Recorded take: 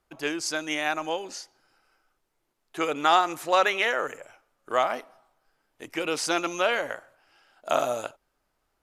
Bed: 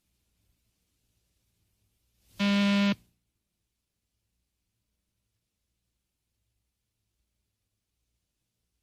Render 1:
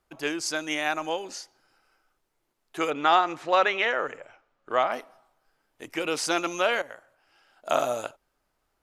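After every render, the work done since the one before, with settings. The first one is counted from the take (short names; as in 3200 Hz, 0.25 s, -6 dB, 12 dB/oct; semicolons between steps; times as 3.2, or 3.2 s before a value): 2.9–4.92 LPF 4100 Hz; 6.82–7.79 fade in equal-power, from -12.5 dB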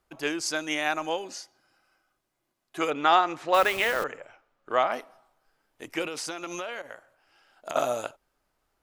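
1.24–2.82 notch comb 450 Hz; 3.54–4.04 level-crossing sampler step -31.5 dBFS; 6.05–7.76 compressor 12:1, threshold -30 dBFS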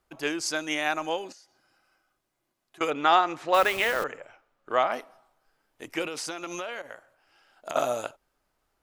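1.32–2.81 compressor 4:1, threshold -53 dBFS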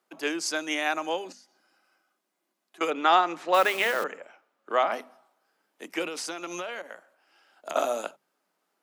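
steep high-pass 170 Hz 72 dB/oct; notches 50/100/150/200/250 Hz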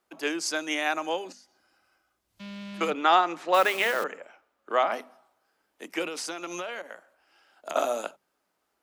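add bed -15.5 dB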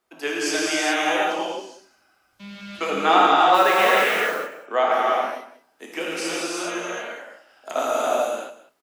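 echo 0.19 s -16.5 dB; non-linear reverb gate 0.45 s flat, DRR -6 dB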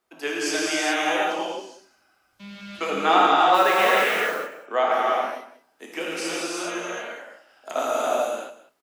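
gain -1.5 dB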